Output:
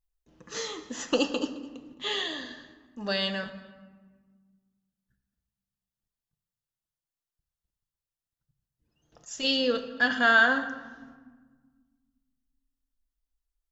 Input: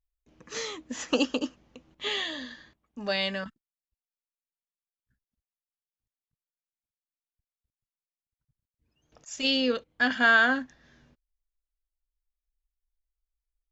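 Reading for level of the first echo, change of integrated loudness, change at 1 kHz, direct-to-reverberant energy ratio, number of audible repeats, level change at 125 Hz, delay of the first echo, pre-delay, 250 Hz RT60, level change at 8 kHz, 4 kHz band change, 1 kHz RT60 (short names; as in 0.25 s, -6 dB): -20.0 dB, 0.0 dB, +1.0 dB, 6.5 dB, 1, n/a, 0.214 s, 6 ms, 2.3 s, n/a, +0.5 dB, 1.4 s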